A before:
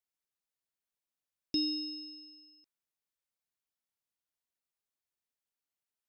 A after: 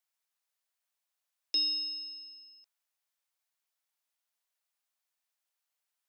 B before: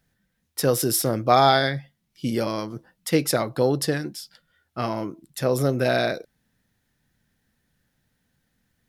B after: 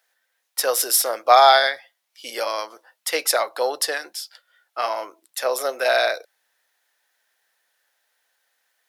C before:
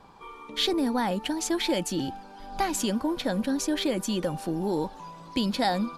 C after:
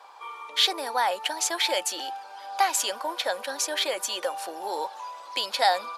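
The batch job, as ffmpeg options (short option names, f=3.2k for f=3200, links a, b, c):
-af "highpass=f=590:w=0.5412,highpass=f=590:w=1.3066,volume=5.5dB"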